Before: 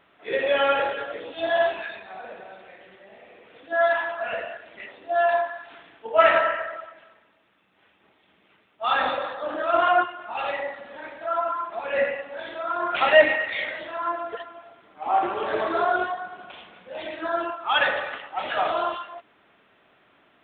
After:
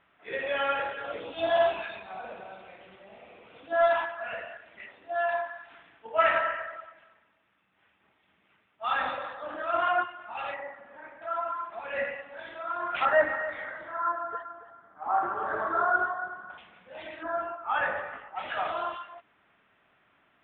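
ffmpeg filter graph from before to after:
-filter_complex "[0:a]asettb=1/sr,asplit=3[a][b][c];[a]atrim=end=1.044[d];[b]atrim=start=1.04:end=4.06,asetpts=PTS-STARTPTS,afade=t=in:d=0.004:c=qsin,afade=t=out:st=3.016:d=0.004:c=qsin,equalizer=f=1.8k:w=3.5:g=-11,acontrast=84[e];[c]atrim=start=4.056[f];[d][e]acrossfade=d=0.004:c1=hsin:c2=qsin[g];[g][f]acrossfade=d=0.004:c1=qsin:c2=hsin,asettb=1/sr,asplit=3[h][i][j];[h]atrim=end=10.544[k];[i]atrim=start=10.54:end=11.22,asetpts=PTS-STARTPTS,afade=t=in:d=0.004:c=qsin,afade=t=out:st=0.676:d=0.004:c=qsin,lowpass=1.8k,lowshelf=f=120:g=-7.5[l];[j]atrim=start=11.216[m];[k][l]acrossfade=d=0.004:c1=hsin:c2=qsin[n];[n][m]acrossfade=d=0.004:c1=qsin:c2=hsin,asettb=1/sr,asplit=3[o][p][q];[o]atrim=end=13.054[r];[p]atrim=start=13.05:end=16.58,asetpts=PTS-STARTPTS,afade=t=in:d=0.004:c=qsin,afade=t=out:st=3.526:d=0.004:c=qsin,highshelf=f=1.9k:t=q:w=3:g=-9,aecho=1:1:280:0.211,atrim=end_sample=155673[s];[q]atrim=start=16.576[t];[r][s]acrossfade=d=0.004:c1=hsin:c2=qsin[u];[u][t]acrossfade=d=0.004:c1=qsin:c2=hsin,asettb=1/sr,asplit=3[v][w][x];[v]atrim=end=17.234[y];[w]atrim=start=17.23:end=18.36,asetpts=PTS-STARTPTS,afade=t=in:d=0.004:c=qsin,afade=t=out:st=1.126:d=0.004:c=qsin,lowpass=1.5k,asplit=2[z][aa];[aa]adelay=19,volume=-2dB[ab];[z][ab]amix=inputs=2:normalize=0,atrim=end_sample=49833[ac];[x]atrim=start=18.356[ad];[y][ac]acrossfade=d=0.004:c1=hsin:c2=qsin[ae];[ae][ad]acrossfade=d=0.004:c1=qsin:c2=hsin,lowpass=2.7k,equalizer=f=410:w=0.65:g=-7.5,volume=-3dB"

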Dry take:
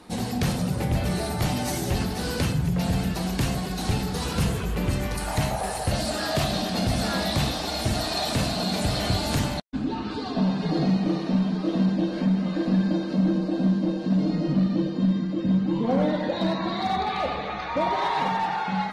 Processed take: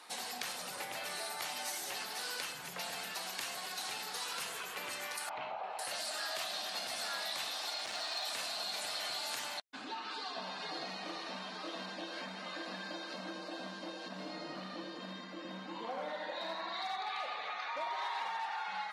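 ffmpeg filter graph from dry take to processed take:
-filter_complex "[0:a]asettb=1/sr,asplit=3[a][b][c];[a]atrim=end=5.294[d];[b]atrim=start=5.29:end=5.79,asetpts=PTS-STARTPTS,afade=t=in:d=0.004:c=qsin,afade=t=out:st=0.496:d=0.004:c=qsin,lowpass=f=2.6k:w=0.5412,lowpass=f=2.6k:w=1.3066,equalizer=f=1.8k:w=3:g=-13[e];[c]atrim=start=5.786[f];[d][e]acrossfade=d=0.004:c1=hsin:c2=qsin[g];[g][f]acrossfade=d=0.004:c1=qsin:c2=hsin,asettb=1/sr,asplit=3[h][i][j];[h]atrim=end=7.744[k];[i]atrim=start=7.74:end=8.25,asetpts=PTS-STARTPTS,afade=t=in:d=0.004:c=qsin,afade=t=out:st=0.506:d=0.004:c=qsin,lowpass=6.6k,asoftclip=type=hard:threshold=-21.5dB[l];[j]atrim=start=8.246[m];[k][l]acrossfade=d=0.004:c1=hsin:c2=qsin[n];[n][m]acrossfade=d=0.004:c1=qsin:c2=hsin,asettb=1/sr,asplit=3[o][p][q];[o]atrim=end=14.084[r];[p]atrim=start=14.08:end=16.74,asetpts=PTS-STARTPTS,afade=t=in:d=0.004:c=qsin,afade=t=out:st=2.656:d=0.004:c=qsin,lowpass=f=1.7k:p=1,aemphasis=mode=production:type=50fm,aecho=1:1:80:0.631,atrim=end_sample=117306[s];[q]atrim=start=16.736[t];[r][s]acrossfade=d=0.004:c1=hsin:c2=qsin[u];[u][t]acrossfade=d=0.004:c1=qsin:c2=hsin,highpass=1k,acompressor=threshold=-40dB:ratio=2.5"

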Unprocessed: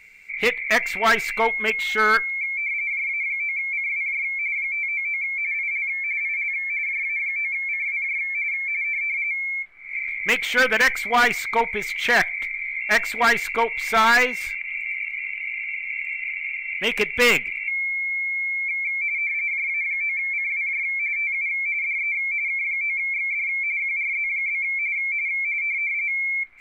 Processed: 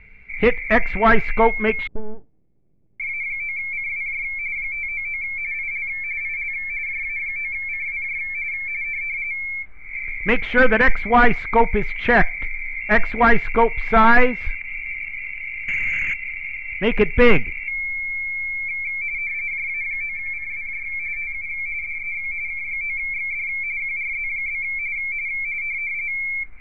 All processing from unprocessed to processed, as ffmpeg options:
-filter_complex "[0:a]asettb=1/sr,asplit=3[a][b][c];[a]atrim=end=1.874[d];[b]atrim=start=1.87:end=3,asetpts=PTS-STARTPTS,afade=t=in:d=0.004:c=qsin,afade=t=out:st=1.126:d=0.004:c=qsin,acompressor=threshold=-21dB:ratio=6:attack=3.2:release=140:knee=1:detection=peak,asuperpass=centerf=210:order=8:qfactor=0.67,aeval=exprs='max(val(0),0)':c=same[e];[c]atrim=start=2.996[f];[d][e]acrossfade=d=0.004:c1=hsin:c2=qsin[g];[g][f]acrossfade=d=0.004:c1=qsin:c2=hsin,asettb=1/sr,asplit=3[h][i][j];[h]atrim=end=15.684[k];[i]atrim=start=15.68:end=16.14,asetpts=PTS-STARTPTS,afade=t=in:d=0.004:c=qsin,afade=t=out:st=0.456:d=0.004:c=qsin,equalizer=f=1.3k:w=5.3:g=5.5,aeval=exprs='0.126*sin(PI/2*2.51*val(0)/0.126)':c=same[l];[j]atrim=start=16.136[m];[k][l]acrossfade=d=0.004:c1=hsin:c2=qsin[n];[n][m]acrossfade=d=0.004:c1=qsin:c2=hsin,asettb=1/sr,asplit=3[o][p][q];[o]atrim=end=20.064[r];[p]atrim=start=20.06:end=22.71,asetpts=PTS-STARTPTS,afade=t=in:d=0.004:c=qsin,afade=t=out:st=2.646:d=0.004:c=qsin,equalizer=f=4.3k:w=0.54:g=-4.5,aecho=1:1:87:0.398,atrim=end_sample=116865[s];[q]atrim=start=22.706[t];[r][s]acrossfade=d=0.004:c1=hsin:c2=qsin[u];[u][t]acrossfade=d=0.004:c1=qsin:c2=hsin,lowpass=2.5k,aemphasis=mode=reproduction:type=riaa,volume=4dB"

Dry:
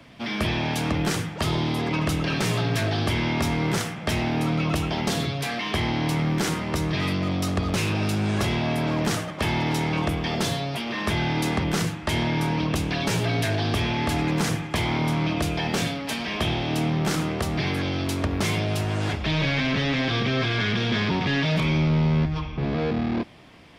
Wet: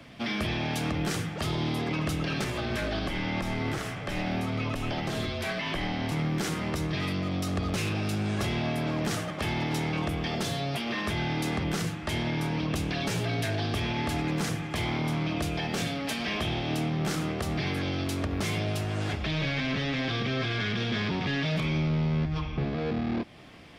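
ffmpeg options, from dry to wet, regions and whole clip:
-filter_complex "[0:a]asettb=1/sr,asplit=3[a][b][c];[a]atrim=end=2.444[d];[b]atrim=start=2.44:end=6.12,asetpts=PTS-STARTPTS,afade=t=in:d=0.004:c=qsin,afade=t=out:st=3.676:d=0.004:c=qsin,acrossover=split=3000[e][f];[f]acompressor=threshold=-37dB:ratio=4:attack=1:release=60[g];[e][g]amix=inputs=2:normalize=0,equalizer=f=120:w=3.1:g=-11,afreqshift=-48[h];[c]atrim=start=6.116[i];[d][h]acrossfade=d=0.004:c1=hsin:c2=qsin[j];[j][i]acrossfade=d=0.004:c1=qsin:c2=hsin,bandreject=f=960:w=13,alimiter=limit=-21.5dB:level=0:latency=1:release=200"

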